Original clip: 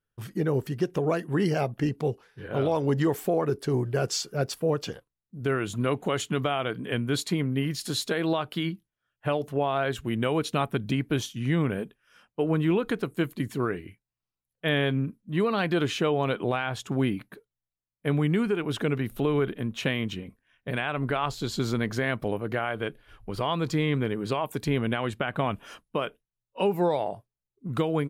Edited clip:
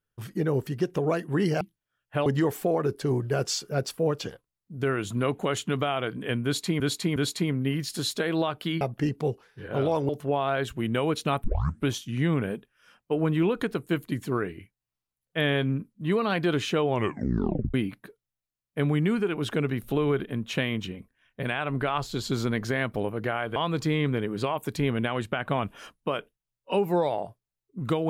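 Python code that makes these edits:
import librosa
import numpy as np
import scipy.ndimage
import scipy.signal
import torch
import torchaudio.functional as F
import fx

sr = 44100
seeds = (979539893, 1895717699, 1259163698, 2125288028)

y = fx.edit(x, sr, fx.swap(start_s=1.61, length_s=1.28, other_s=8.72, other_length_s=0.65),
    fx.repeat(start_s=7.07, length_s=0.36, count=3),
    fx.tape_start(start_s=10.72, length_s=0.43),
    fx.tape_stop(start_s=16.16, length_s=0.86),
    fx.cut(start_s=22.84, length_s=0.6), tone=tone)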